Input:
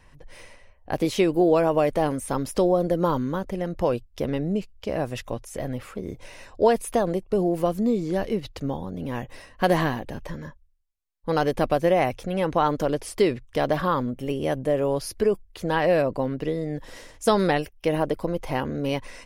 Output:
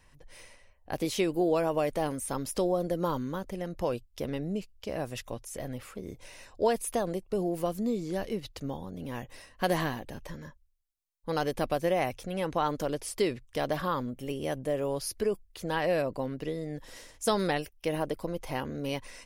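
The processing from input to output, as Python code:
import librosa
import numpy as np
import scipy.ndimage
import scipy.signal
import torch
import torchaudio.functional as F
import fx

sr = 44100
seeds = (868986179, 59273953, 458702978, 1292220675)

y = fx.high_shelf(x, sr, hz=3600.0, db=8.0)
y = F.gain(torch.from_numpy(y), -7.5).numpy()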